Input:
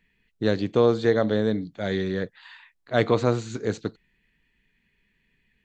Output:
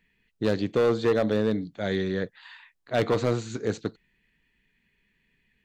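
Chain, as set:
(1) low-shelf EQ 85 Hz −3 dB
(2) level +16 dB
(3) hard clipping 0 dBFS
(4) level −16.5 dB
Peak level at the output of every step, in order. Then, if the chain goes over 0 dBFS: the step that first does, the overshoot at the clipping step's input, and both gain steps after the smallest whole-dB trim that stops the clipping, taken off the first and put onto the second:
−6.0, +10.0, 0.0, −16.5 dBFS
step 2, 10.0 dB
step 2 +6 dB, step 4 −6.5 dB

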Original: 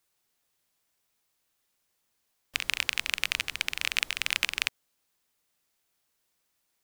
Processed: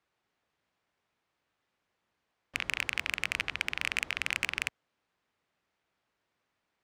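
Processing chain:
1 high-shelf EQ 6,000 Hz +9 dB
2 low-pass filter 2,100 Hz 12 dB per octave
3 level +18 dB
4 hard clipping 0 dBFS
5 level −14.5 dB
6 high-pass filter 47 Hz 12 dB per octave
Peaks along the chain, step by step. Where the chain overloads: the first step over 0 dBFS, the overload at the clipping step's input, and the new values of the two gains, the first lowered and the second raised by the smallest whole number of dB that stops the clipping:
+1.0, −9.0, +9.0, 0.0, −14.5, −14.0 dBFS
step 1, 9.0 dB
step 3 +9 dB, step 5 −5.5 dB

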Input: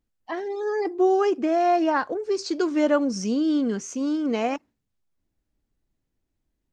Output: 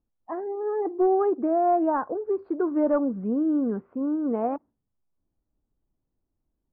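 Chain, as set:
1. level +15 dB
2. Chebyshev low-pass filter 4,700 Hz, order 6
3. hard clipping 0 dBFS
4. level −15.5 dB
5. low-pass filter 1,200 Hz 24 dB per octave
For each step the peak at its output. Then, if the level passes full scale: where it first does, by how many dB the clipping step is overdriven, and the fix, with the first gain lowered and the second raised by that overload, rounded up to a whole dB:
+5.0, +4.5, 0.0, −15.5, −14.5 dBFS
step 1, 4.5 dB
step 1 +10 dB, step 4 −10.5 dB

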